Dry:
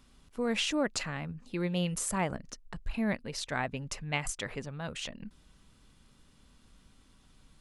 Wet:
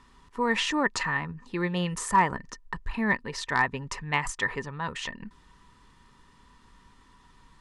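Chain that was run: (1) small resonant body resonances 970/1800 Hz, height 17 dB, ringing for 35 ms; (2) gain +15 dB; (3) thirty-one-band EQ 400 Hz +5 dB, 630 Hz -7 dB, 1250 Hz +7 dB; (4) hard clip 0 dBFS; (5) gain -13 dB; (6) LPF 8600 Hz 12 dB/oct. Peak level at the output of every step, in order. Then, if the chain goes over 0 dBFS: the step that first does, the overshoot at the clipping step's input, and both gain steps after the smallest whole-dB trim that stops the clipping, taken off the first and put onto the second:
-12.0, +3.0, +4.0, 0.0, -13.0, -12.5 dBFS; step 2, 4.0 dB; step 2 +11 dB, step 5 -9 dB

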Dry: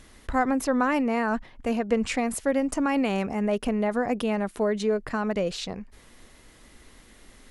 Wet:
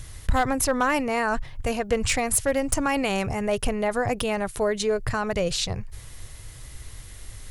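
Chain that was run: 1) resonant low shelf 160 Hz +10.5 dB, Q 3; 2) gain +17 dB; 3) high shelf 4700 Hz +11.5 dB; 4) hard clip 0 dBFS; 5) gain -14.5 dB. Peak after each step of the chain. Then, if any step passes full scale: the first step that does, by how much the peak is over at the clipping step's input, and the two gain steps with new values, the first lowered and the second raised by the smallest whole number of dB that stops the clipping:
-11.0, +6.0, +7.5, 0.0, -14.5 dBFS; step 2, 7.5 dB; step 2 +9 dB, step 5 -6.5 dB

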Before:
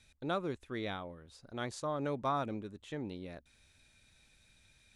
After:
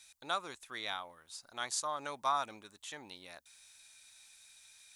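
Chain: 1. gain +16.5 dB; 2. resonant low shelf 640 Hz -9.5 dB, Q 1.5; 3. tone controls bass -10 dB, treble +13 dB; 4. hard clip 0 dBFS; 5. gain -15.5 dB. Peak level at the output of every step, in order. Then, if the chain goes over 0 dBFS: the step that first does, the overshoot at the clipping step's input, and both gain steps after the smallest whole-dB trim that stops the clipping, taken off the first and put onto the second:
-5.5, -5.0, -5.0, -5.0, -20.5 dBFS; no overload

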